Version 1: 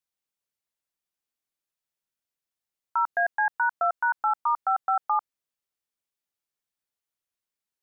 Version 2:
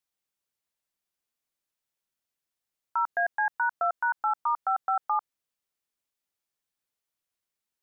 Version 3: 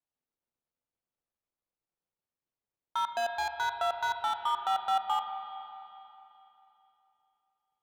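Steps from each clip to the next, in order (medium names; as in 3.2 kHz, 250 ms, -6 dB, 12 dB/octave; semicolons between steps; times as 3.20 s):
peak limiter -20.5 dBFS, peak gain reduction 4 dB; trim +1.5 dB
median filter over 25 samples; spring tank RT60 3.1 s, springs 32/40 ms, chirp 25 ms, DRR 6 dB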